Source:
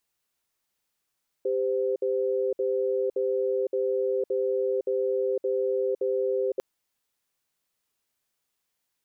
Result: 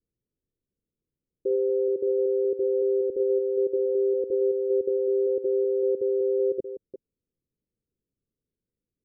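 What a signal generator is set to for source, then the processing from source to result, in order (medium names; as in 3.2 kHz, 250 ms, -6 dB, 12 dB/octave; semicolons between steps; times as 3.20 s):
cadence 395 Hz, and 515 Hz, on 0.51 s, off 0.06 s, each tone -26 dBFS 5.15 s
chunks repeated in reverse 188 ms, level -11 dB; steep low-pass 510 Hz 48 dB/octave; bass shelf 300 Hz +10 dB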